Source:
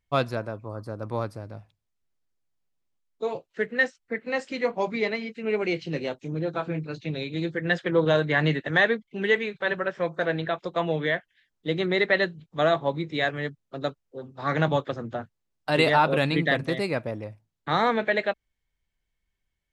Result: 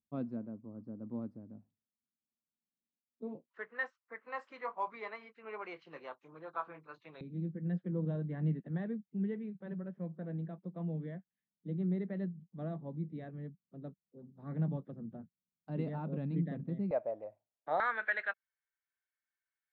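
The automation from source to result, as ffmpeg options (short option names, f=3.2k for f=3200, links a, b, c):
-af "asetnsamples=n=441:p=0,asendcmd='3.5 bandpass f 1100;7.21 bandpass f 190;16.91 bandpass f 640;17.8 bandpass f 1500',bandpass=f=230:t=q:w=4.6:csg=0"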